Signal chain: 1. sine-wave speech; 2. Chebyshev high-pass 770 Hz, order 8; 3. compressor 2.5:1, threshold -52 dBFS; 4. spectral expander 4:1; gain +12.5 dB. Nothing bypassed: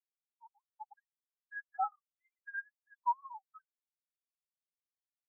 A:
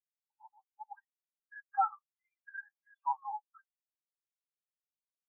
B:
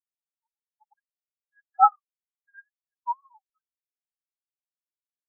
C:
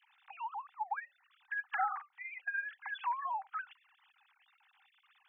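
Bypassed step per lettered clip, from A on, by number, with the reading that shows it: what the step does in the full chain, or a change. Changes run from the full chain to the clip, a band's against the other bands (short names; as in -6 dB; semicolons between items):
1, momentary loudness spread change +2 LU; 3, mean gain reduction 8.0 dB; 4, crest factor change -3.0 dB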